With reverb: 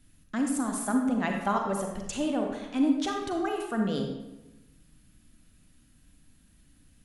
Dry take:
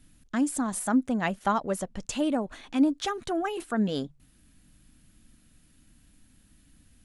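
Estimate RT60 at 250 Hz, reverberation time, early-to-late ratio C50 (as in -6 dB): 1.2 s, 1.0 s, 3.5 dB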